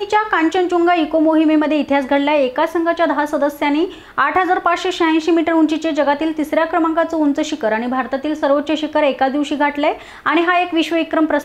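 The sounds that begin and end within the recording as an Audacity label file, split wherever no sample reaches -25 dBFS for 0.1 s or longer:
4.180000	10.020000	sound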